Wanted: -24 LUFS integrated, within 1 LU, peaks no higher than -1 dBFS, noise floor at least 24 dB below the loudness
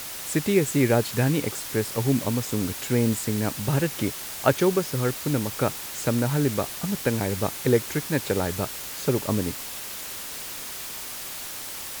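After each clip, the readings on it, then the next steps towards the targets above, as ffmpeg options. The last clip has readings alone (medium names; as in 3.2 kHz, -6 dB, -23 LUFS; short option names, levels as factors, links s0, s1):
noise floor -36 dBFS; noise floor target -50 dBFS; loudness -26.0 LUFS; peak level -5.0 dBFS; loudness target -24.0 LUFS
-> -af "afftdn=nr=14:nf=-36"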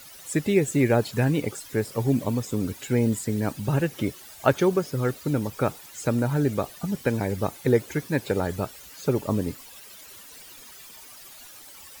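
noise floor -46 dBFS; noise floor target -50 dBFS
-> -af "afftdn=nr=6:nf=-46"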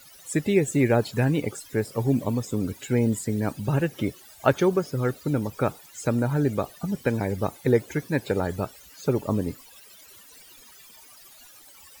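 noise floor -50 dBFS; loudness -26.0 LUFS; peak level -5.5 dBFS; loudness target -24.0 LUFS
-> -af "volume=1.26"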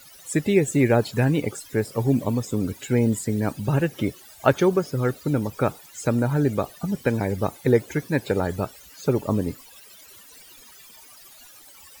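loudness -24.0 LUFS; peak level -3.5 dBFS; noise floor -48 dBFS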